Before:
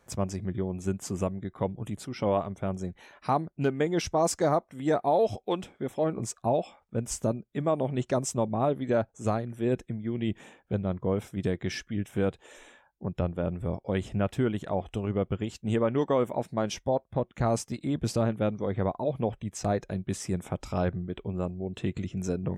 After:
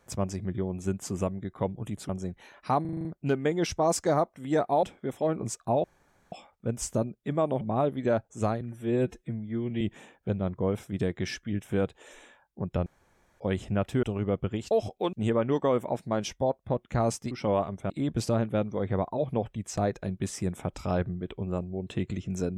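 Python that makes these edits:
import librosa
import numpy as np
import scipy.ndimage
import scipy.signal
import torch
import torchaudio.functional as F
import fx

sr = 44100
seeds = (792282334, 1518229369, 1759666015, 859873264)

y = fx.edit(x, sr, fx.move(start_s=2.09, length_s=0.59, to_s=17.77),
    fx.stutter(start_s=3.4, slice_s=0.04, count=7),
    fx.move(start_s=5.18, length_s=0.42, to_s=15.59),
    fx.insert_room_tone(at_s=6.61, length_s=0.48),
    fx.cut(start_s=7.9, length_s=0.55),
    fx.stretch_span(start_s=9.45, length_s=0.8, factor=1.5),
    fx.room_tone_fill(start_s=13.3, length_s=0.54),
    fx.cut(start_s=14.47, length_s=0.44), tone=tone)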